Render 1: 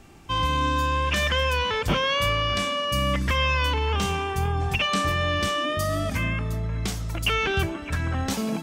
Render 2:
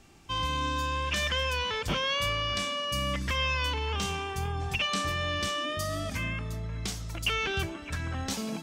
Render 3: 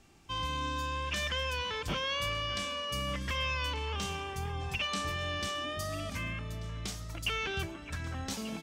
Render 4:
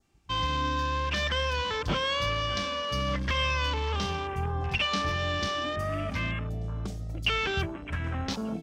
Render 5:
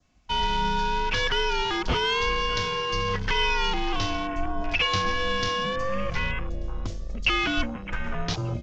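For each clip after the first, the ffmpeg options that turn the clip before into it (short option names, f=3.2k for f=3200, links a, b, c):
-af "equalizer=f=5.3k:t=o:w=2:g=6,volume=-7.5dB"
-af "aecho=1:1:1187:0.15,volume=-4.5dB"
-af "afwtdn=0.00631,adynamicequalizer=threshold=0.00398:dfrequency=2600:dqfactor=2.1:tfrequency=2600:tqfactor=2.1:attack=5:release=100:ratio=0.375:range=2.5:mode=cutabove:tftype=bell,volume=6.5dB"
-af "afreqshift=-97,aresample=16000,aresample=44100,volume=4dB"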